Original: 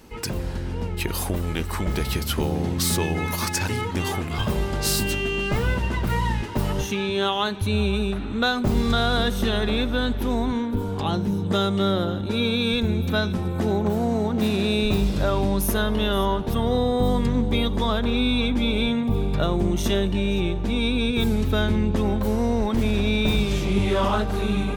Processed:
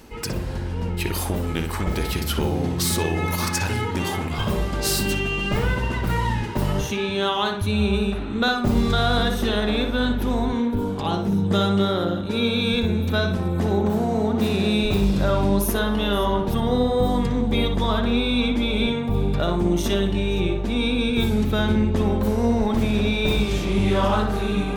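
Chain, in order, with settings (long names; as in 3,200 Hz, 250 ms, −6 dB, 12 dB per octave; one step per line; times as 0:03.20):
reversed playback
upward compression, threshold −30 dBFS
reversed playback
tape delay 60 ms, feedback 43%, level −3 dB, low-pass 2,300 Hz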